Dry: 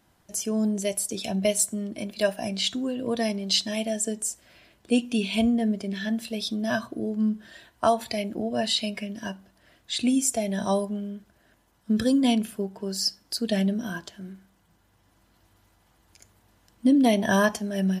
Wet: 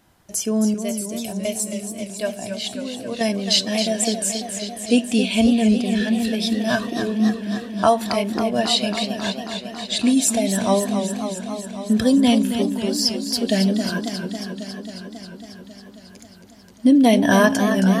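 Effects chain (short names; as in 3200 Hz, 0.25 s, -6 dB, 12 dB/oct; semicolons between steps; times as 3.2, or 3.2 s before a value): 0.74–3.21 resonator 120 Hz, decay 0.99 s, harmonics odd, mix 60%; warbling echo 0.272 s, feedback 76%, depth 110 cents, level -8.5 dB; gain +5.5 dB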